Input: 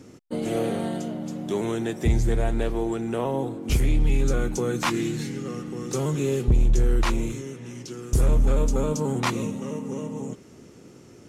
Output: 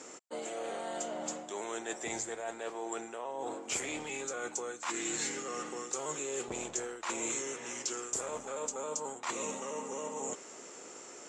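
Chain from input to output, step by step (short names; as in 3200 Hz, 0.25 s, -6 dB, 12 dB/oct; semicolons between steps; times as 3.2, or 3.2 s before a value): Chebyshev high-pass 750 Hz, order 2; high shelf 4100 Hz -11.5 dB; reverse; compressor 16:1, threshold -43 dBFS, peak gain reduction 21 dB; reverse; synth low-pass 7400 Hz, resonance Q 9.2; gain +7.5 dB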